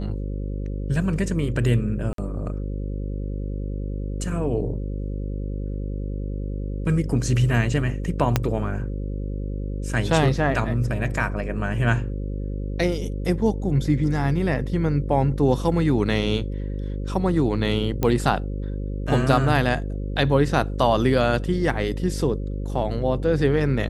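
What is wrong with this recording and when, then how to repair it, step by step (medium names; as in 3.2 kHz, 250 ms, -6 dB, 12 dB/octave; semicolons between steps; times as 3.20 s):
buzz 50 Hz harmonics 11 -28 dBFS
2.13–2.18 s: dropout 53 ms
8.36 s: pop -4 dBFS
18.03 s: pop -9 dBFS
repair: de-click; de-hum 50 Hz, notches 11; interpolate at 2.13 s, 53 ms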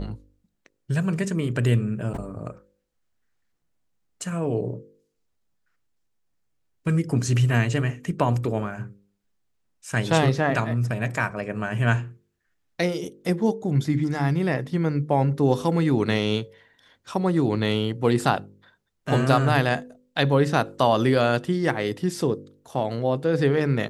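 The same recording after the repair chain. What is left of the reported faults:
8.36 s: pop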